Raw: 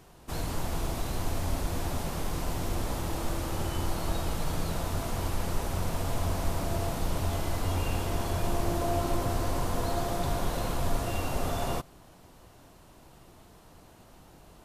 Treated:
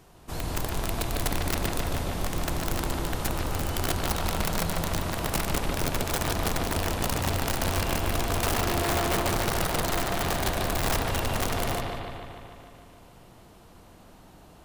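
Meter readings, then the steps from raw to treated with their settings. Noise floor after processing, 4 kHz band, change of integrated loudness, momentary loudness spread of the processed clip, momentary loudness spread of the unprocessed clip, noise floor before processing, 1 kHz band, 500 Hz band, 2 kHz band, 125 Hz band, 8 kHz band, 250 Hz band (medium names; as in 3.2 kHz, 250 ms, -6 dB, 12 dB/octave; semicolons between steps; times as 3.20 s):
-52 dBFS, +8.0 dB, +4.0 dB, 5 LU, 3 LU, -55 dBFS, +4.5 dB, +3.5 dB, +9.0 dB, +1.5 dB, +7.0 dB, +3.0 dB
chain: feedback echo behind a high-pass 182 ms, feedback 37%, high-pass 4 kHz, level -11 dB; integer overflow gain 22 dB; on a send: bucket-brigade echo 148 ms, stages 4096, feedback 68%, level -4 dB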